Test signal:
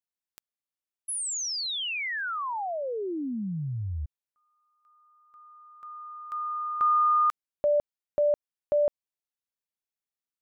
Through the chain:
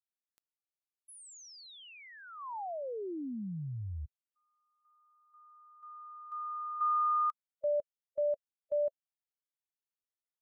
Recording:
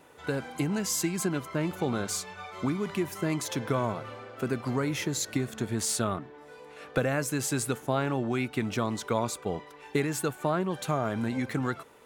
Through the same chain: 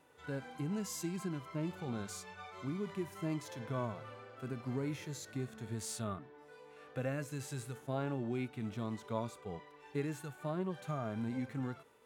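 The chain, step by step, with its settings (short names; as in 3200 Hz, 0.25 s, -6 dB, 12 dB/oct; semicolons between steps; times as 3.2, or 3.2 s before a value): harmonic-percussive split percussive -14 dB; gain -7 dB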